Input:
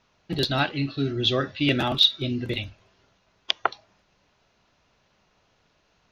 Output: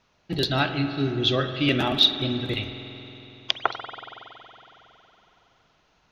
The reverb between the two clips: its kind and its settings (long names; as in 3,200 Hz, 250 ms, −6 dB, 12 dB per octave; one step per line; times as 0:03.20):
spring reverb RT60 3.6 s, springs 46 ms, chirp 75 ms, DRR 7.5 dB